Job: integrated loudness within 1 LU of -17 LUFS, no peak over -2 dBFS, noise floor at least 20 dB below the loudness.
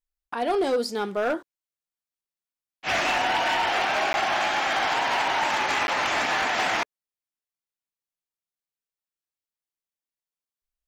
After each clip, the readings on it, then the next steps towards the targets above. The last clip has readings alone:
clipped samples 1.1%; clipping level -18.5 dBFS; dropouts 2; longest dropout 11 ms; loudness -24.0 LUFS; peak level -18.5 dBFS; loudness target -17.0 LUFS
-> clip repair -18.5 dBFS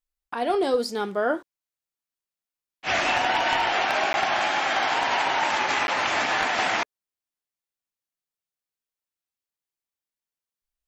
clipped samples 0.0%; dropouts 2; longest dropout 11 ms
-> interpolate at 4.13/5.87 s, 11 ms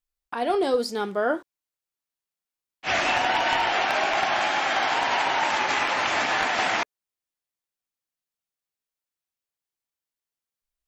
dropouts 0; loudness -23.5 LUFS; peak level -9.5 dBFS; loudness target -17.0 LUFS
-> trim +6.5 dB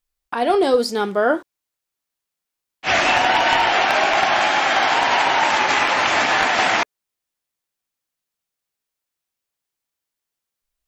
loudness -17.0 LUFS; peak level -3.0 dBFS; noise floor -84 dBFS

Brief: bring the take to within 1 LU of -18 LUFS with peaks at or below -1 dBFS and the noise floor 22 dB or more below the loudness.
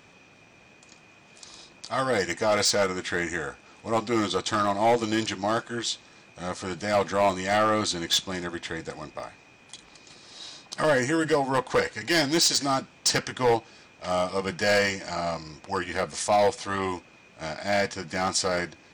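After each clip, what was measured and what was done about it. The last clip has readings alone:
clipped samples 0.7%; clipping level -16.0 dBFS; dropouts 3; longest dropout 1.2 ms; loudness -26.0 LUFS; peak level -16.0 dBFS; loudness target -18.0 LUFS
-> clip repair -16 dBFS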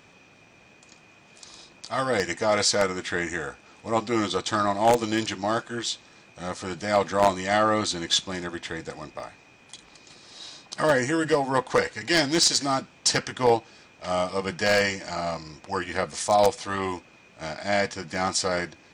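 clipped samples 0.0%; dropouts 3; longest dropout 1.2 ms
-> interpolate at 9.20/16.28/18.15 s, 1.2 ms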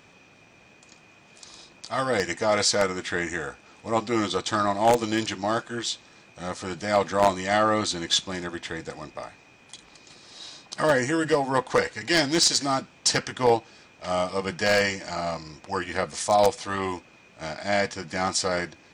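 dropouts 0; loudness -25.0 LUFS; peak level -7.0 dBFS; loudness target -18.0 LUFS
-> trim +7 dB; peak limiter -1 dBFS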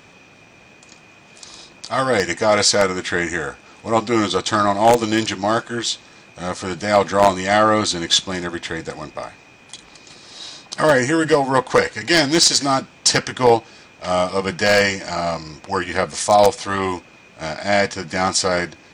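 loudness -18.0 LUFS; peak level -1.0 dBFS; noise floor -48 dBFS

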